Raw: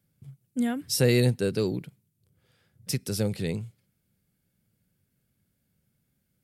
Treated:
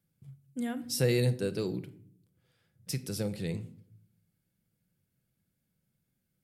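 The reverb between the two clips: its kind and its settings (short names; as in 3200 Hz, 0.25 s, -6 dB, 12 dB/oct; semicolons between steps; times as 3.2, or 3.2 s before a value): shoebox room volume 930 m³, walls furnished, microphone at 0.71 m; gain -6 dB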